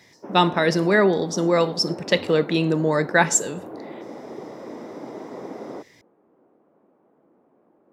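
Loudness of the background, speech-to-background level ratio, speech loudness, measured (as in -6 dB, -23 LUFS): -37.0 LUFS, 16.5 dB, -20.5 LUFS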